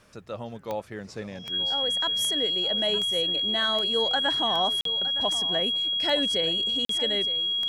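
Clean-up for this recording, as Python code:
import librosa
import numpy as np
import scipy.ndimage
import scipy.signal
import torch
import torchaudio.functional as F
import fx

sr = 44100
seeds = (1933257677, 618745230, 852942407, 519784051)

y = fx.fix_declick_ar(x, sr, threshold=10.0)
y = fx.notch(y, sr, hz=3300.0, q=30.0)
y = fx.fix_interpolate(y, sr, at_s=(4.81, 6.85), length_ms=43.0)
y = fx.fix_echo_inverse(y, sr, delay_ms=914, level_db=-14.5)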